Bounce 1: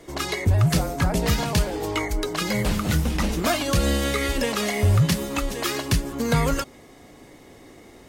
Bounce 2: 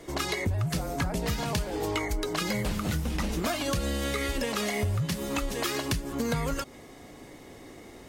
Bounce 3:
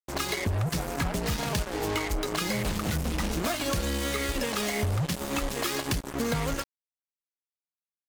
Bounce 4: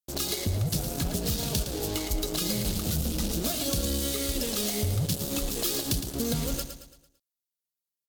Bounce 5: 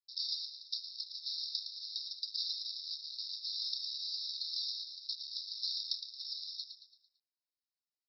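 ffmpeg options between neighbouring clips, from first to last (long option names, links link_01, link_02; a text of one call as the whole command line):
ffmpeg -i in.wav -af "acompressor=threshold=-26dB:ratio=6" out.wav
ffmpeg -i in.wav -af "acrusher=bits=4:mix=0:aa=0.5" out.wav
ffmpeg -i in.wav -filter_complex "[0:a]equalizer=frequency=1000:width_type=o:width=1:gain=-10,equalizer=frequency=2000:width_type=o:width=1:gain=-11,equalizer=frequency=4000:width_type=o:width=1:gain=4,equalizer=frequency=16000:width_type=o:width=1:gain=9,asplit=2[link_01][link_02];[link_02]aecho=0:1:112|224|336|448|560:0.355|0.156|0.0687|0.0302|0.0133[link_03];[link_01][link_03]amix=inputs=2:normalize=0" out.wav
ffmpeg -i in.wav -af "aeval=exprs='val(0)*sin(2*PI*900*n/s)':channel_layout=same,asuperpass=centerf=4500:order=20:qfactor=2.5,volume=3.5dB" out.wav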